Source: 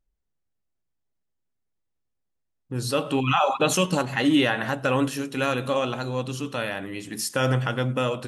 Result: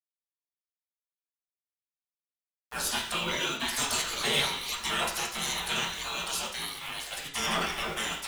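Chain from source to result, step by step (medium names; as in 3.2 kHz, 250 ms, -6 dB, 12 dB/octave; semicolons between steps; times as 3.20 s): spectral gate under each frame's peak -25 dB weak; dynamic bell 2.3 kHz, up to -4 dB, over -50 dBFS, Q 1.1; waveshaping leveller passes 3; bit crusher 8-bit; reverberation, pre-delay 3 ms, DRR -1 dB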